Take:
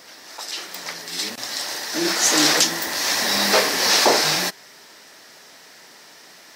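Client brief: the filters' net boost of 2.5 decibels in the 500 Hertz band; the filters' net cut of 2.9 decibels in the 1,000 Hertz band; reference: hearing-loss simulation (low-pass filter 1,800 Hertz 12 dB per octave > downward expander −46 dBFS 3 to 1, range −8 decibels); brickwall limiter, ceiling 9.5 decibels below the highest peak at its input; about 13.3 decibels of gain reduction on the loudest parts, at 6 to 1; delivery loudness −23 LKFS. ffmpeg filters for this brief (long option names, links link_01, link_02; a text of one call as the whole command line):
ffmpeg -i in.wav -af "equalizer=frequency=500:width_type=o:gain=4.5,equalizer=frequency=1000:width_type=o:gain=-5,acompressor=threshold=-26dB:ratio=6,alimiter=limit=-22dB:level=0:latency=1,lowpass=1800,agate=range=-8dB:threshold=-46dB:ratio=3,volume=14.5dB" out.wav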